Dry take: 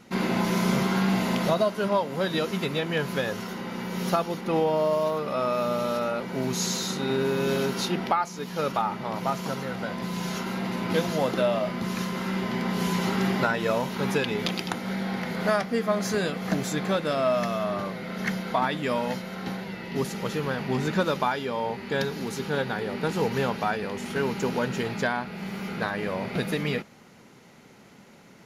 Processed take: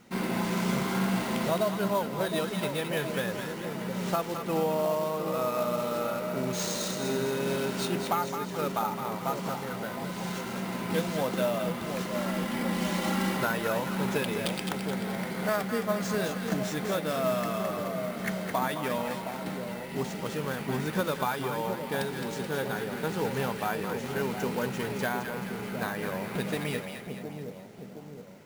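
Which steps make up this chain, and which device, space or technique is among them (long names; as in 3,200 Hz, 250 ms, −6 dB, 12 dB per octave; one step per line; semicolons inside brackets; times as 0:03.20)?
0:12.11–0:13.37: comb filter 3.6 ms, depth 82%
echo with a time of its own for lows and highs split 820 Hz, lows 715 ms, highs 215 ms, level −6.5 dB
early companding sampler (sample-rate reduction 13,000 Hz, jitter 0%; log-companded quantiser 6 bits)
level −4.5 dB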